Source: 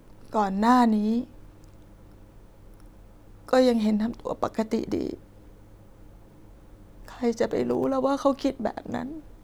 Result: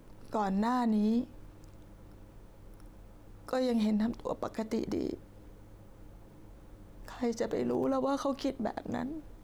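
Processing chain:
brickwall limiter −20 dBFS, peak gain reduction 11 dB
level −2.5 dB

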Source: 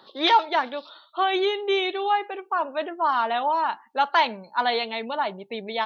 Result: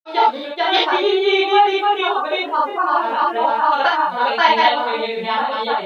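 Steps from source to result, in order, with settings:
surface crackle 420 per second −51 dBFS
granular cloud, spray 604 ms, pitch spread up and down by 0 semitones
reverb whose tail is shaped and stops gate 100 ms flat, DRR −6.5 dB
level +1 dB

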